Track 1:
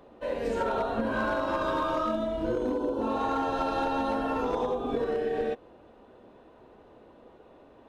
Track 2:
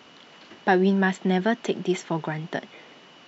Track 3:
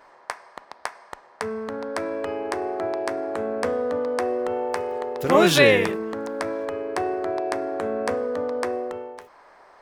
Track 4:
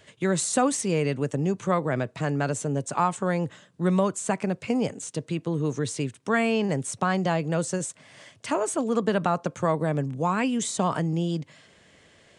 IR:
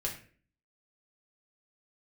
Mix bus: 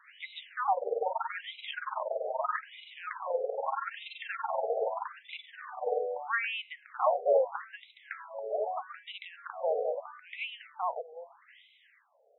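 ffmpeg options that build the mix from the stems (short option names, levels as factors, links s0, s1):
-filter_complex "[0:a]tremolo=f=21:d=0.974,adelay=450,volume=1.19[s0];[1:a]volume=0.596,asplit=2[s1][s2];[2:a]adelay=1700,volume=0.447[s3];[3:a]volume=0.631[s4];[s2]apad=whole_len=546034[s5];[s4][s5]sidechaincompress=threshold=0.0141:ratio=8:attack=16:release=178[s6];[s0][s1][s3][s6]amix=inputs=4:normalize=0,highshelf=f=3700:g=7.5,afftfilt=real='re*between(b*sr/1024,550*pow(2900/550,0.5+0.5*sin(2*PI*0.79*pts/sr))/1.41,550*pow(2900/550,0.5+0.5*sin(2*PI*0.79*pts/sr))*1.41)':imag='im*between(b*sr/1024,550*pow(2900/550,0.5+0.5*sin(2*PI*0.79*pts/sr))/1.41,550*pow(2900/550,0.5+0.5*sin(2*PI*0.79*pts/sr))*1.41)':win_size=1024:overlap=0.75"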